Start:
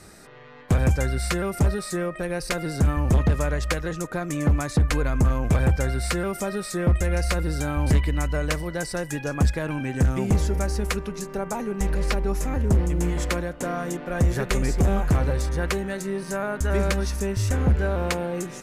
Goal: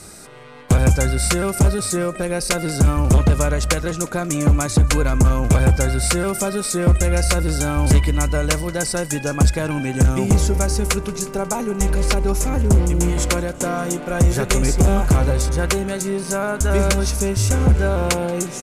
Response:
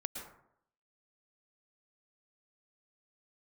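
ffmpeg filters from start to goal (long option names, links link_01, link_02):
-filter_complex "[0:a]equalizer=frequency=8800:width_type=o:width=1.4:gain=7.5,bandreject=frequency=1800:width=7.9,asplit=2[link_01][link_02];[link_02]asplit=5[link_03][link_04][link_05][link_06][link_07];[link_03]adelay=180,afreqshift=36,volume=-23dB[link_08];[link_04]adelay=360,afreqshift=72,volume=-27dB[link_09];[link_05]adelay=540,afreqshift=108,volume=-31dB[link_10];[link_06]adelay=720,afreqshift=144,volume=-35dB[link_11];[link_07]adelay=900,afreqshift=180,volume=-39.1dB[link_12];[link_08][link_09][link_10][link_11][link_12]amix=inputs=5:normalize=0[link_13];[link_01][link_13]amix=inputs=2:normalize=0,volume=5.5dB"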